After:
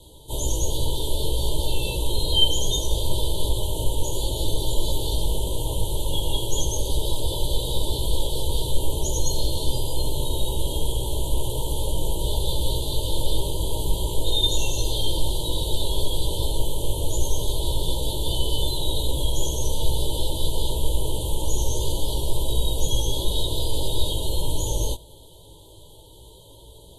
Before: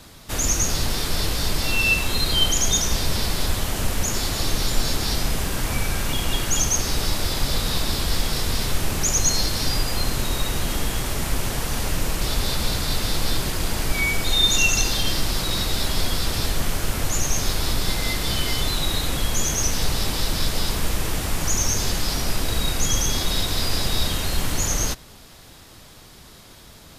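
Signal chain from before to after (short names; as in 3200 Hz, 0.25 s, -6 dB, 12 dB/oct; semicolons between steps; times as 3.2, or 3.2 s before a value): rattling part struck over -28 dBFS, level -21 dBFS; Chebyshev band-stop 940–3100 Hz, order 5; chorus 0.1 Hz, delay 15.5 ms, depth 3.2 ms; fixed phaser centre 1100 Hz, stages 8; gain +5 dB; AAC 32 kbps 44100 Hz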